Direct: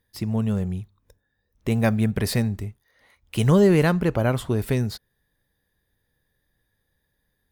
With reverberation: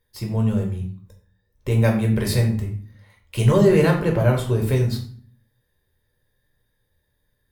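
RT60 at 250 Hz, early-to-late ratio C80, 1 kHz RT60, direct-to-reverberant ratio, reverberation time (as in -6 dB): 0.75 s, 12.0 dB, 0.45 s, 0.0 dB, 0.45 s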